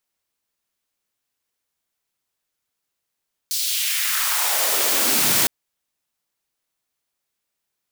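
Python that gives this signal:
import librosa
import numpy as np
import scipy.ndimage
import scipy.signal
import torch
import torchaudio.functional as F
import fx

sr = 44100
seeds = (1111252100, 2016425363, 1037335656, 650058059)

y = fx.riser_noise(sr, seeds[0], length_s=1.96, colour='white', kind='highpass', start_hz=4900.0, end_hz=120.0, q=1.9, swell_db=7.0, law='exponential')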